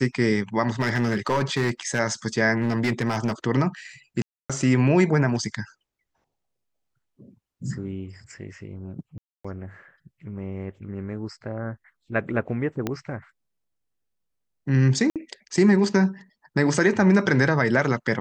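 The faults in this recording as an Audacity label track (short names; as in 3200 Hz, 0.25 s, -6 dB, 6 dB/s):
0.800000	2.000000	clipped -17.5 dBFS
2.580000	3.320000	clipped -18.5 dBFS
4.220000	4.500000	gap 0.276 s
9.180000	9.450000	gap 0.265 s
12.870000	12.870000	pop -12 dBFS
15.100000	15.160000	gap 57 ms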